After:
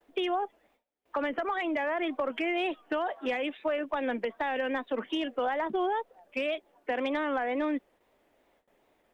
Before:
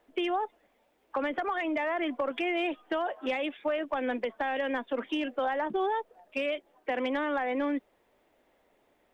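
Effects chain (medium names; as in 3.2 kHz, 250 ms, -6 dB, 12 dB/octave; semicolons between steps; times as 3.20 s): wow and flutter 99 cents; gate with hold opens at -59 dBFS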